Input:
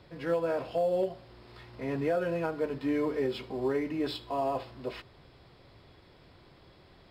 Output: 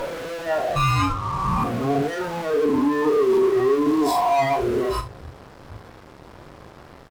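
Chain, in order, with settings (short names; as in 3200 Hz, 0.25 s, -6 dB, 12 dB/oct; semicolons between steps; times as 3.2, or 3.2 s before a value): spectral swells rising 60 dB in 2.42 s; 0.76–1.64 ring modulator 660 Hz; band shelf 3000 Hz -12 dB; in parallel at +1.5 dB: limiter -27 dBFS, peak gain reduction 11 dB; on the sum: fuzz box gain 42 dB, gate -46 dBFS; spectral noise reduction 14 dB; on a send: early reflections 39 ms -10 dB, 73 ms -18 dB; on the sum: gain -3.5 dB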